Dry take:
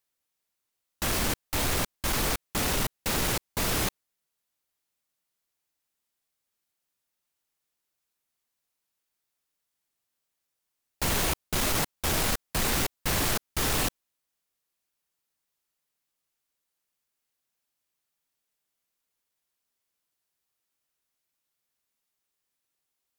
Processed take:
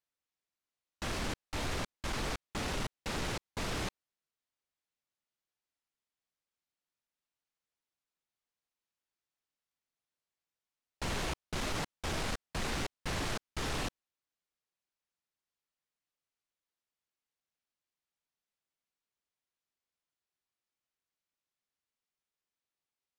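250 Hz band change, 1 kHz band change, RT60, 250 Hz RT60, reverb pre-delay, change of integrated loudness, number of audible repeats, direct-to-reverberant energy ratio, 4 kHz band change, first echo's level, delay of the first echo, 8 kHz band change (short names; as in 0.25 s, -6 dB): -7.0 dB, -7.5 dB, none, none, none, -10.0 dB, none, none, -9.0 dB, none, none, -14.0 dB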